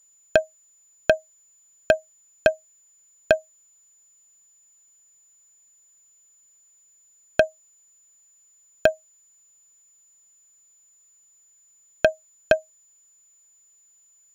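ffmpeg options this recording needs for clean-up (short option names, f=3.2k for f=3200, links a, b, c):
-af "bandreject=f=7k:w=30"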